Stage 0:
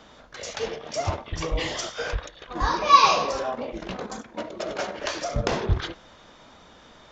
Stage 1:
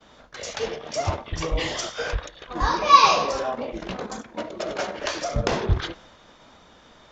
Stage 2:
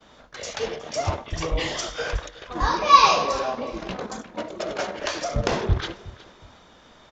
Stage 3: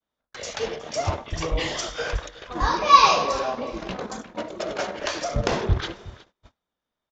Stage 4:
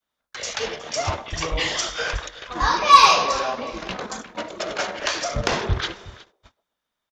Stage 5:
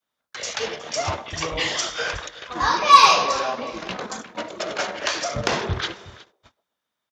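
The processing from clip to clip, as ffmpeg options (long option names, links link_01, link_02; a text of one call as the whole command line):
ffmpeg -i in.wav -af "agate=range=-33dB:threshold=-47dB:ratio=3:detection=peak,volume=1.5dB" out.wav
ffmpeg -i in.wav -af "aecho=1:1:366|732:0.112|0.0325" out.wav
ffmpeg -i in.wav -af "agate=range=-34dB:threshold=-44dB:ratio=16:detection=peak" out.wav
ffmpeg -i in.wav -filter_complex "[0:a]acrossover=split=370|950[link_01][link_02][link_03];[link_02]aecho=1:1:131|262|393:0.282|0.0874|0.0271[link_04];[link_03]acontrast=80[link_05];[link_01][link_04][link_05]amix=inputs=3:normalize=0,volume=-1.5dB" out.wav
ffmpeg -i in.wav -af "highpass=85" out.wav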